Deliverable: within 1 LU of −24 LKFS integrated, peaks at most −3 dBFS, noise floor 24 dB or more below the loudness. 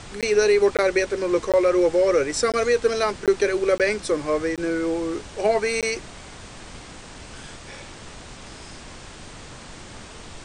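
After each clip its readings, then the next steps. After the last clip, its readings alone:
number of dropouts 8; longest dropout 17 ms; background noise floor −41 dBFS; target noise floor −46 dBFS; integrated loudness −21.5 LKFS; sample peak −8.5 dBFS; target loudness −24.0 LKFS
→ repair the gap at 0:00.21/0:00.77/0:01.52/0:02.52/0:03.26/0:03.78/0:04.56/0:05.81, 17 ms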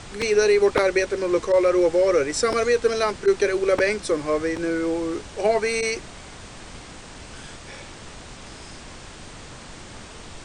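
number of dropouts 0; background noise floor −41 dBFS; target noise floor −46 dBFS
→ noise reduction from a noise print 6 dB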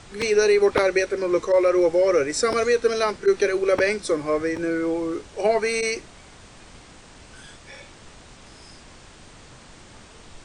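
background noise floor −47 dBFS; integrated loudness −21.5 LKFS; sample peak −6.5 dBFS; target loudness −24.0 LKFS
→ level −2.5 dB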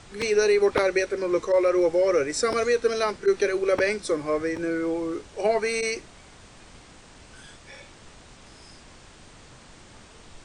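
integrated loudness −24.0 LKFS; sample peak −9.0 dBFS; background noise floor −50 dBFS

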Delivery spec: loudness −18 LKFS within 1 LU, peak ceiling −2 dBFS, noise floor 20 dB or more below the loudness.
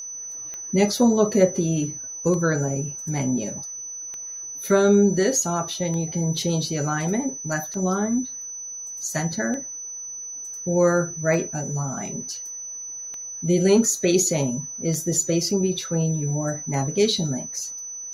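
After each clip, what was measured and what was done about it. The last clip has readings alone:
number of clicks 10; interfering tone 6,000 Hz; level of the tone −32 dBFS; integrated loudness −23.5 LKFS; sample peak −4.5 dBFS; target loudness −18.0 LKFS
→ click removal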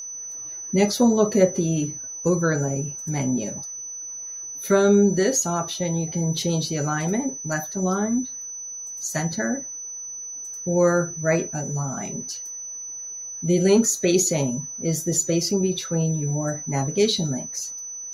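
number of clicks 0; interfering tone 6,000 Hz; level of the tone −32 dBFS
→ notch filter 6,000 Hz, Q 30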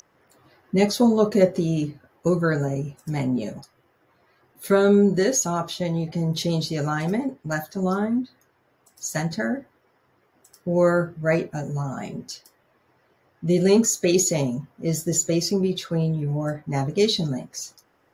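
interfering tone none found; integrated loudness −23.0 LKFS; sample peak −5.0 dBFS; target loudness −18.0 LKFS
→ level +5 dB
brickwall limiter −2 dBFS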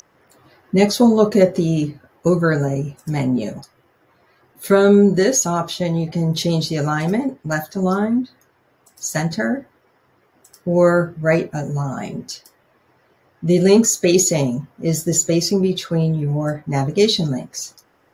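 integrated loudness −18.0 LKFS; sample peak −2.0 dBFS; background noise floor −60 dBFS

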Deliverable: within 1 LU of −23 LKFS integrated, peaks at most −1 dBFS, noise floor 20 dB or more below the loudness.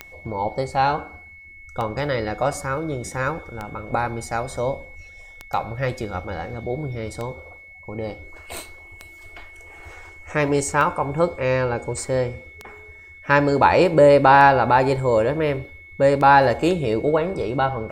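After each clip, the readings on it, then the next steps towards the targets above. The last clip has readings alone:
number of clicks 10; interfering tone 2,200 Hz; level of the tone −42 dBFS; integrated loudness −20.5 LKFS; sample peak −1.5 dBFS; target loudness −23.0 LKFS
→ click removal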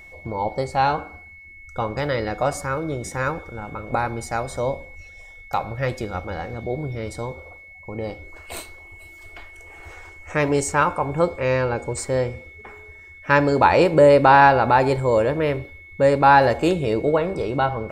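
number of clicks 0; interfering tone 2,200 Hz; level of the tone −42 dBFS
→ notch filter 2,200 Hz, Q 30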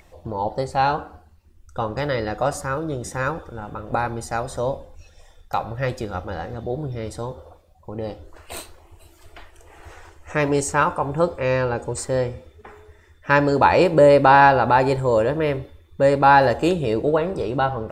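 interfering tone none found; integrated loudness −20.5 LKFS; sample peak −2.0 dBFS; target loudness −23.0 LKFS
→ level −2.5 dB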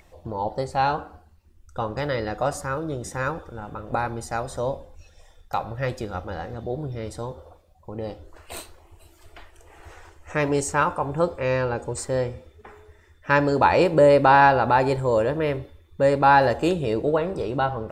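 integrated loudness −23.0 LKFS; sample peak −4.5 dBFS; background noise floor −55 dBFS

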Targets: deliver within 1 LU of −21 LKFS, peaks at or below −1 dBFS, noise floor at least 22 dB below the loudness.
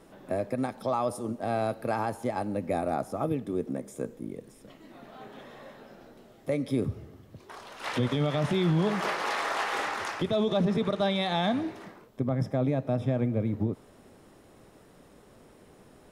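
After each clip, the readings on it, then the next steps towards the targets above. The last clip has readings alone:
integrated loudness −29.5 LKFS; sample peak −18.0 dBFS; target loudness −21.0 LKFS
→ level +8.5 dB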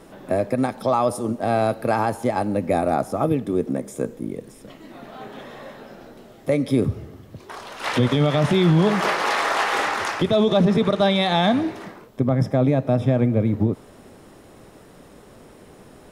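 integrated loudness −21.0 LKFS; sample peak −9.5 dBFS; background noise floor −47 dBFS

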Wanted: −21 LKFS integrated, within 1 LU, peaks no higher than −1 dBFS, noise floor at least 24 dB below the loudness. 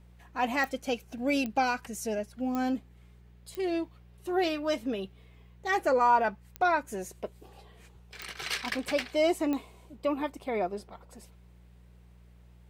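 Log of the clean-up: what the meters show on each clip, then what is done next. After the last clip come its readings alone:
number of clicks 7; mains hum 60 Hz; hum harmonics up to 180 Hz; level of the hum −52 dBFS; integrated loudness −30.5 LKFS; sample peak −13.5 dBFS; target loudness −21.0 LKFS
→ click removal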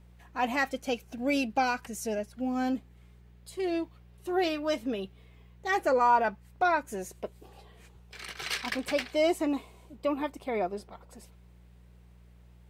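number of clicks 0; mains hum 60 Hz; hum harmonics up to 180 Hz; level of the hum −52 dBFS
→ hum removal 60 Hz, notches 3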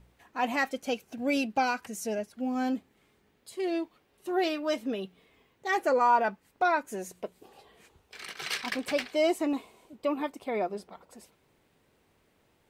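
mains hum none found; integrated loudness −30.5 LKFS; sample peak −13.5 dBFS; target loudness −21.0 LKFS
→ level +9.5 dB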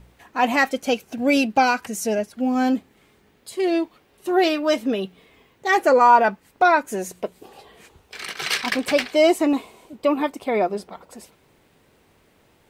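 integrated loudness −21.0 LKFS; sample peak −4.0 dBFS; background noise floor −59 dBFS

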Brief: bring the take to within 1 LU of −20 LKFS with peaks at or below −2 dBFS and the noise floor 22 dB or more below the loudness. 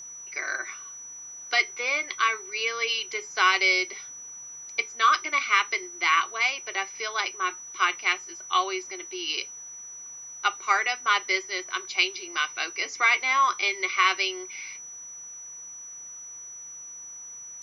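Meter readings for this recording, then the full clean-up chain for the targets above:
interfering tone 5,900 Hz; level of the tone −39 dBFS; integrated loudness −25.0 LKFS; sample peak −7.5 dBFS; target loudness −20.0 LKFS
→ notch filter 5,900 Hz, Q 30
level +5 dB

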